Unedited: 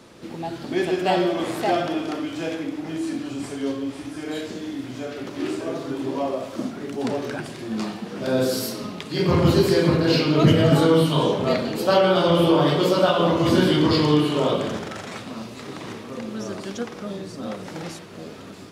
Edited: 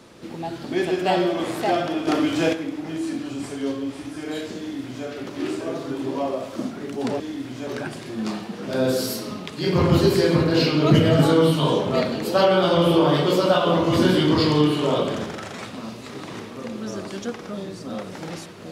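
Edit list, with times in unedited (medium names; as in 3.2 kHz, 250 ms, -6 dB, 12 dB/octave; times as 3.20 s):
2.07–2.53 s: gain +7.5 dB
4.59–5.06 s: copy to 7.20 s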